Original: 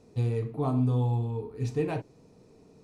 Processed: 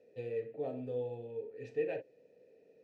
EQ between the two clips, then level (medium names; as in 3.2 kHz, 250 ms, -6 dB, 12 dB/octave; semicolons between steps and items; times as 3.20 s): vowel filter e; +5.0 dB